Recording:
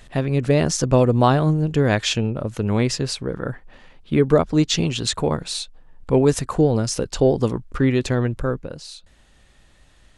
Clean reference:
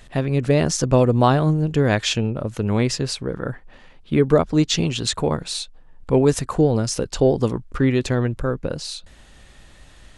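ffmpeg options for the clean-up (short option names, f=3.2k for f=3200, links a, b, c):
-af "asetnsamples=n=441:p=0,asendcmd='8.63 volume volume 7dB',volume=0dB"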